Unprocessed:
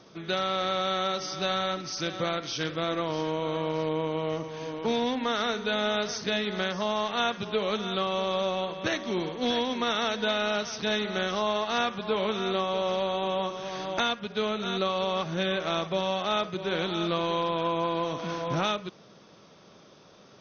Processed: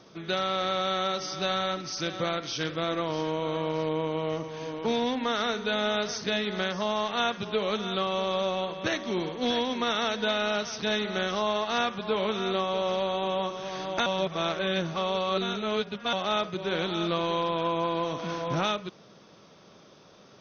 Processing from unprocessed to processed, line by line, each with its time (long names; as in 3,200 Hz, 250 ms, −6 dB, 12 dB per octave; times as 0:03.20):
0:14.06–0:16.13: reverse